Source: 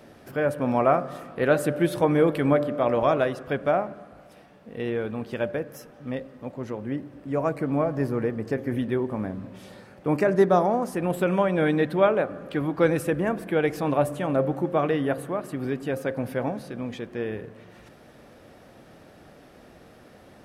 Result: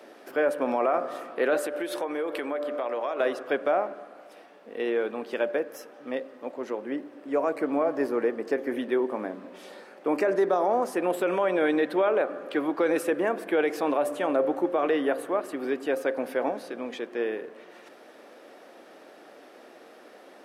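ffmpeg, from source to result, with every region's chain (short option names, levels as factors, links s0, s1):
-filter_complex "[0:a]asettb=1/sr,asplit=3[s0][s1][s2];[s0]atrim=end=1.584[s3];[s1]atrim=start=1.58:end=3.2,asetpts=PTS-STARTPTS,afade=t=in:d=0.004:c=qsin,afade=t=out:st=1.616:d=0.004:c=qsin,highpass=f=420:p=1,acompressor=threshold=0.0398:ratio=6:attack=3.2:release=140:knee=1:detection=peak[s4];[s2]atrim=start=3.196[s5];[s3][s4]acrossfade=d=0.004:c1=hsin:c2=qsin[s6];[s6][s5]acrossfade=d=0.004:c1=qsin:c2=hsin,highpass=f=300:w=0.5412,highpass=f=300:w=1.3066,highshelf=f=6500:g=-4.5,alimiter=limit=0.133:level=0:latency=1:release=47,volume=1.33"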